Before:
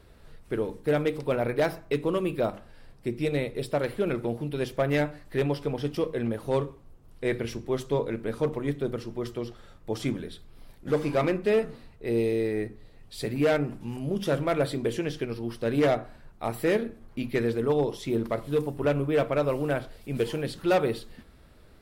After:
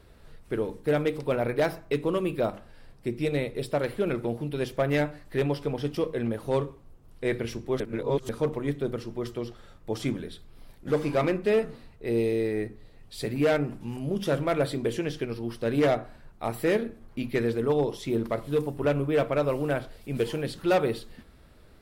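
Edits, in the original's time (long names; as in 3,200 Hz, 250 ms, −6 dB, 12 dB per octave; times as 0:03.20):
0:07.80–0:08.29: reverse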